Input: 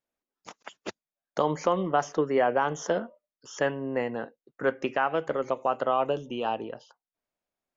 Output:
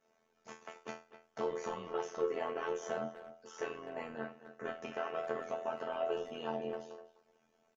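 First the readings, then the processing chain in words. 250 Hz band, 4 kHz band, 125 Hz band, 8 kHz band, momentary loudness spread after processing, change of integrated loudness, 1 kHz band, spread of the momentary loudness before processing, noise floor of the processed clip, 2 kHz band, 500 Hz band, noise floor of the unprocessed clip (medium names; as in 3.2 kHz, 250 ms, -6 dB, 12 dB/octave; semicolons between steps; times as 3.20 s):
-13.5 dB, -10.0 dB, -17.0 dB, no reading, 15 LU, -11.5 dB, -13.5 dB, 17 LU, -76 dBFS, -12.0 dB, -10.0 dB, under -85 dBFS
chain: spectral levelling over time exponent 0.6; feedback comb 220 Hz, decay 0.31 s, harmonics all, mix 100%; speakerphone echo 250 ms, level -12 dB; two-slope reverb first 0.33 s, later 3.3 s, from -21 dB, DRR 18.5 dB; AM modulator 83 Hz, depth 60%; trim +2 dB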